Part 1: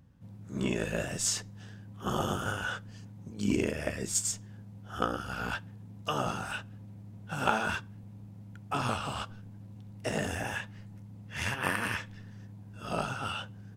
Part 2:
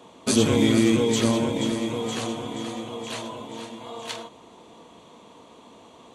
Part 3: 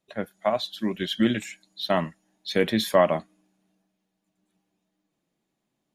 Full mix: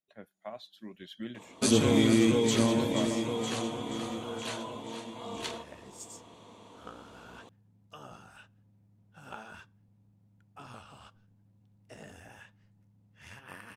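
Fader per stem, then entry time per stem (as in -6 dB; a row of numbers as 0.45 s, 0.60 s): -17.0 dB, -4.0 dB, -18.5 dB; 1.85 s, 1.35 s, 0.00 s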